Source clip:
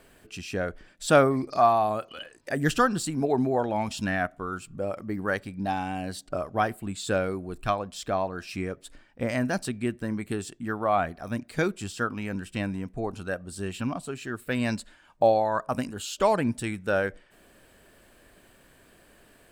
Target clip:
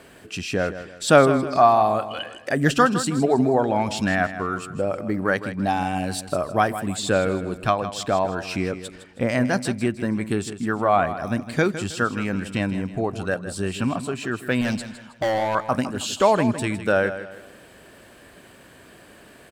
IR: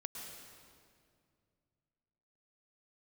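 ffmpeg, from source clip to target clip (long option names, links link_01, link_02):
-filter_complex "[0:a]highpass=73,highshelf=frequency=11000:gain=-8.5,asplit=2[link_01][link_02];[link_02]acompressor=threshold=-36dB:ratio=6,volume=-1.5dB[link_03];[link_01][link_03]amix=inputs=2:normalize=0,asettb=1/sr,asplit=3[link_04][link_05][link_06];[link_04]atrim=end=14.614[link_07];[link_05]atrim=start=14.61:end=15.55,asetpts=PTS-STARTPTS,afade=type=in:duration=0.004:curve=qsin,afade=type=out:start_time=0.936:duration=0.004:curve=qsin,volume=24dB,asoftclip=hard,volume=-24dB[link_08];[link_06]atrim=start=15.546[link_09];[link_07][link_08]acrossfade=duration=0.004:curve1=hsin:curve2=qsin[link_10];[link_10][link_09]acrossfade=duration=0.004:curve1=qsin:curve2=hsin,aecho=1:1:159|318|477|636:0.251|0.0904|0.0326|0.0117,asettb=1/sr,asplit=3[link_11][link_12][link_13];[link_11]atrim=end=5.524[link_14];[link_12]atrim=start=5.52:end=7,asetpts=PTS-STARTPTS,afade=type=in:duration=0.004:curve=qsin,afade=type=out:start_time=1.476:duration=0.004:curve=qsin,adynamicequalizer=threshold=0.00355:dfrequency=6200:dqfactor=0.7:tfrequency=6200:tqfactor=0.7:attack=5:release=100:ratio=0.375:range=3.5:mode=boostabove:tftype=highshelf[link_15];[link_13]atrim=start=6.996[link_16];[link_14][link_15]acrossfade=duration=0.004:curve1=hsin:curve2=qsin[link_17];[link_17][link_16]acrossfade=duration=0.004:curve1=qsin:curve2=hsin,volume=4dB"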